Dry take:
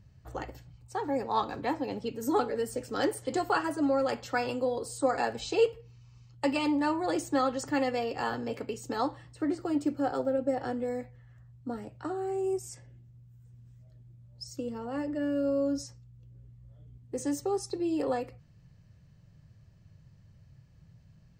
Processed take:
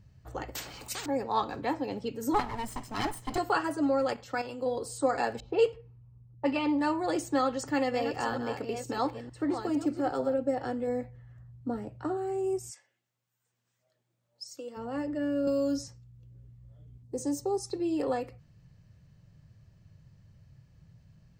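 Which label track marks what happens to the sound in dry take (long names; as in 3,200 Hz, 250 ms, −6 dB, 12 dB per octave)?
0.550000	1.060000	every bin compressed towards the loudest bin 10 to 1
2.340000	3.380000	lower of the sound and its delayed copy delay 0.98 ms
4.130000	4.660000	output level in coarse steps of 10 dB
5.400000	6.800000	low-pass that shuts in the quiet parts closes to 420 Hz, open at −20.5 dBFS
7.460000	10.340000	delay that plays each chunk backwards 459 ms, level −8 dB
10.870000	12.170000	tilt shelving filter lows +3.5 dB, about 1,400 Hz
12.700000	14.760000	high-pass filter 1,100 Hz → 460 Hz
15.470000	15.880000	multiband upward and downward compressor depth 70%
17.030000	17.650000	flat-topped bell 2,100 Hz −10 dB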